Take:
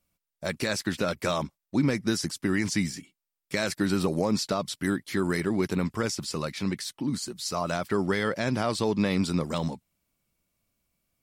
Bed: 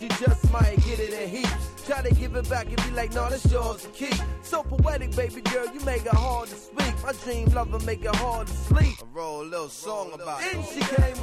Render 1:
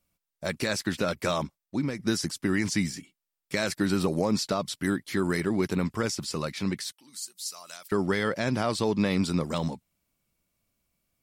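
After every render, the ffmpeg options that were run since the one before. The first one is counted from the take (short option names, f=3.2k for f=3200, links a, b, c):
-filter_complex "[0:a]asettb=1/sr,asplit=3[a][b][c];[a]atrim=end=6.924[d];[b]atrim=start=6.92:end=7.92,asetpts=PTS-STARTPTS,afade=t=in:d=0.004:c=qsin,afade=t=out:st=0.996:d=0.004:c=qsin,aderivative[e];[c]atrim=start=7.916[f];[d][e]acrossfade=d=0.004:c1=hsin:c2=qsin[g];[g][f]acrossfade=d=0.004:c1=qsin:c2=hsin,asplit=2[h][i];[h]atrim=end=1.99,asetpts=PTS-STARTPTS,afade=t=out:st=1.43:d=0.56:silence=0.398107[j];[i]atrim=start=1.99,asetpts=PTS-STARTPTS,afade=t=in:d=0.004:c=hsin:silence=0.398107[k];[j][k]concat=n=2:v=0:a=1"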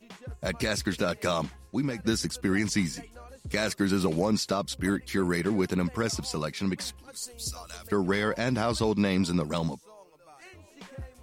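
-filter_complex "[1:a]volume=-21dB[a];[0:a][a]amix=inputs=2:normalize=0"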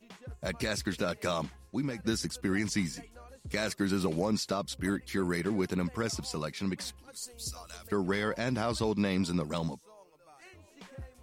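-af "volume=-4dB"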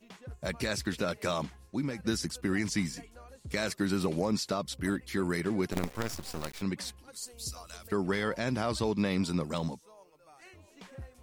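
-filter_complex "[0:a]asettb=1/sr,asplit=3[a][b][c];[a]atrim=end=5.724[d];[b]atrim=start=5.72:end=6.62,asetpts=PTS-STARTPTS,afade=t=in:d=0.004:c=qsin,afade=t=out:st=0.896:d=0.004:c=qsin,acrusher=bits=5:dc=4:mix=0:aa=0.000001[e];[c]atrim=start=6.616[f];[d][e]acrossfade=d=0.004:c1=hsin:c2=qsin[g];[g][f]acrossfade=d=0.004:c1=qsin:c2=hsin"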